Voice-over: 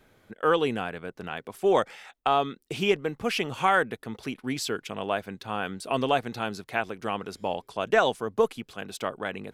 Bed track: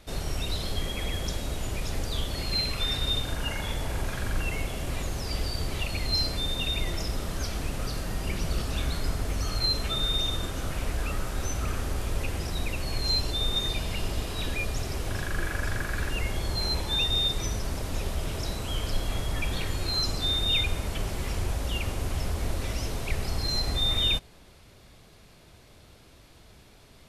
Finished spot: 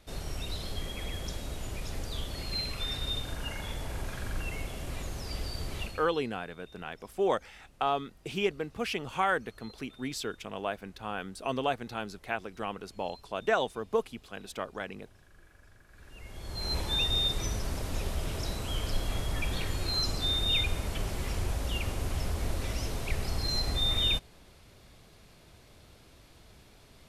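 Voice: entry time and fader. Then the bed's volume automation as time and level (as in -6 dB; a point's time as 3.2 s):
5.55 s, -5.5 dB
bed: 5.84 s -6 dB
6.19 s -28.5 dB
15.85 s -28.5 dB
16.77 s -2.5 dB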